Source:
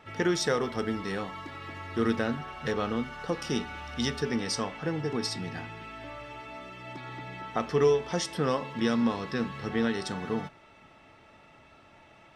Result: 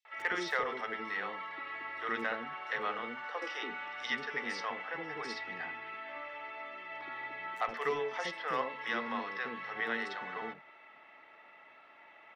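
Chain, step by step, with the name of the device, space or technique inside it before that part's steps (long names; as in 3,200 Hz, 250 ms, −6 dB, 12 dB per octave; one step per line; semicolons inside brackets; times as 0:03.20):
megaphone (band-pass filter 510–2,900 Hz; parametric band 2,000 Hz +8 dB 0.2 octaves; hard clipping −20 dBFS, distortion −28 dB)
0:03.12–0:03.58: Butterworth high-pass 230 Hz 96 dB per octave
dynamic equaliser 350 Hz, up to −4 dB, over −46 dBFS, Q 0.82
three-band delay without the direct sound highs, mids, lows 50/120 ms, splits 490/5,900 Hz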